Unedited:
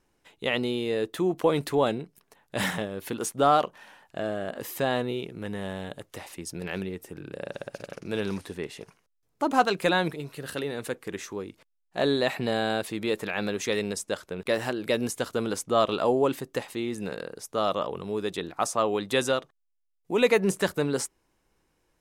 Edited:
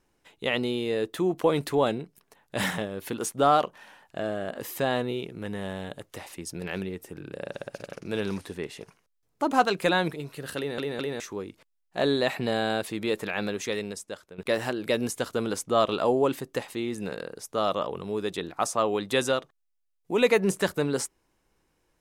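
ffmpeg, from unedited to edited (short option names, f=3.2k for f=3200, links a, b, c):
-filter_complex "[0:a]asplit=5[a][b][c][d][e];[a]atrim=end=10.782[f];[b]atrim=start=10.568:end=10.782[g];[c]atrim=start=10.568:end=10.782[h];[d]atrim=start=11.198:end=14.38,asetpts=PTS-STARTPTS,afade=t=out:st=2.162:d=1.02:silence=0.223872[i];[e]atrim=start=14.38,asetpts=PTS-STARTPTS,afade=t=in:d=0.004:c=hsin:silence=0.223872[j];[f][g]acrossfade=d=0.004:c1=hsin:c2=hsin[k];[k][h]acrossfade=d=0.004:c1=hsin:c2=hsin[l];[i][j]concat=n=2:v=0:a=1[m];[l][m]acrossfade=d=0.004:c1=hsin:c2=hsin"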